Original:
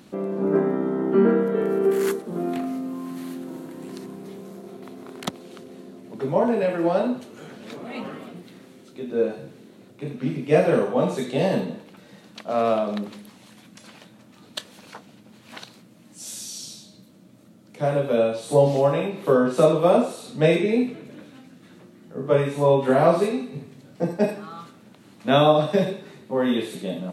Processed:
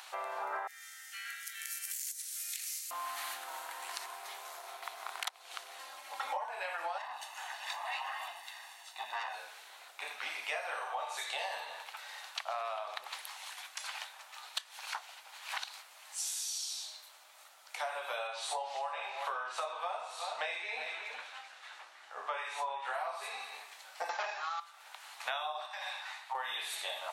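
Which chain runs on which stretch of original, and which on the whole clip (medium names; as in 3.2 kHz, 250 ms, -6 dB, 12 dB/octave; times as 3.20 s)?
0.67–2.91 s: inverse Chebyshev high-pass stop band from 1.1 kHz + resonant high shelf 4.4 kHz +11 dB, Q 1.5 + compression, threshold -40 dBFS
5.79–6.46 s: brick-wall FIR high-pass 190 Hz + comb 3.7 ms, depth 96%
6.98–9.35 s: valve stage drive 29 dB, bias 0.65 + comb 1.1 ms, depth 72%
18.27–22.94 s: distance through air 57 m + delay 372 ms -15.5 dB
24.09–24.60 s: waveshaping leveller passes 3 + brick-wall FIR low-pass 7.4 kHz
25.66–26.35 s: steep high-pass 640 Hz 48 dB/octave + compression 3:1, threshold -34 dBFS + treble shelf 9.1 kHz -10.5 dB
whole clip: Chebyshev high-pass 790 Hz, order 4; compression 16:1, threshold -42 dBFS; trim +7.5 dB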